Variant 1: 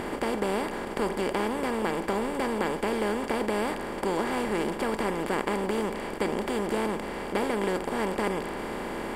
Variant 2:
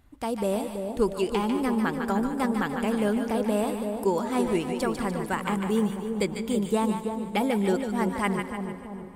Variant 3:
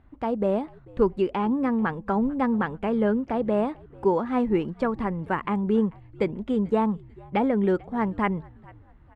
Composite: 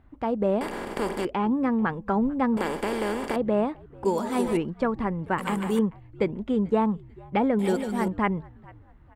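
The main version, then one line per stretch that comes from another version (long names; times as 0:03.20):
3
0:00.61–0:01.25: punch in from 1
0:02.57–0:03.36: punch in from 1
0:04.05–0:04.57: punch in from 2
0:05.38–0:05.79: punch in from 2
0:07.59–0:08.08: punch in from 2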